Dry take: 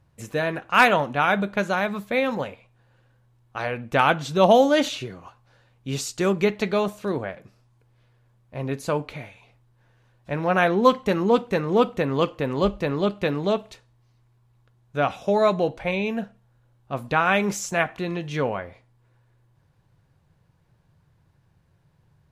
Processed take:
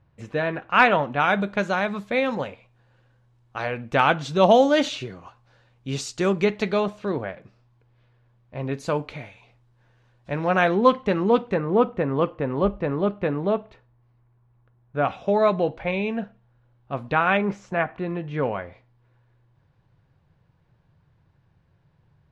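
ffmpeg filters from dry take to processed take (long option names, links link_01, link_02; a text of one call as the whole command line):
ffmpeg -i in.wav -af "asetnsamples=nb_out_samples=441:pad=0,asendcmd='1.2 lowpass f 6900;6.8 lowpass f 4200;8.75 lowpass f 6900;10.77 lowpass f 3500;11.54 lowpass f 1800;15.05 lowpass f 3300;17.37 lowpass f 1800;18.43 lowpass f 4100',lowpass=3300" out.wav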